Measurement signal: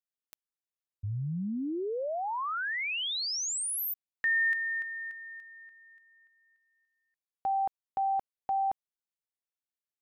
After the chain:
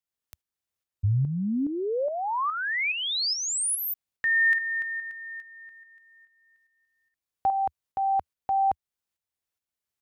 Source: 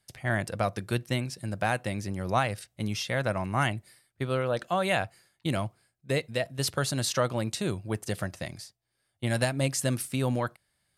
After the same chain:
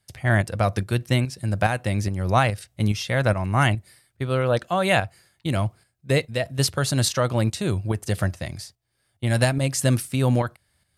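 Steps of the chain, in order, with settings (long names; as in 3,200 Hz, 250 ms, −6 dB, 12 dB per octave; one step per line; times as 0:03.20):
parametric band 78 Hz +9 dB 1.1 octaves
shaped tremolo saw up 2.4 Hz, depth 55%
level +7.5 dB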